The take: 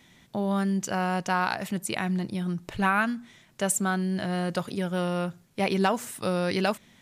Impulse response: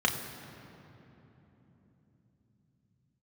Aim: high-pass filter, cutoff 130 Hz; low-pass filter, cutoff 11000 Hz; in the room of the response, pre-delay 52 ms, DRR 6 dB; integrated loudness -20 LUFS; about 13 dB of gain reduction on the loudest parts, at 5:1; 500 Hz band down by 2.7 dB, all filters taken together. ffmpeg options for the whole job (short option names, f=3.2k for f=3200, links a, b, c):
-filter_complex "[0:a]highpass=130,lowpass=11k,equalizer=f=500:t=o:g=-3.5,acompressor=threshold=-35dB:ratio=5,asplit=2[a][b];[1:a]atrim=start_sample=2205,adelay=52[c];[b][c]afir=irnorm=-1:irlink=0,volume=-17dB[d];[a][d]amix=inputs=2:normalize=0,volume=17dB"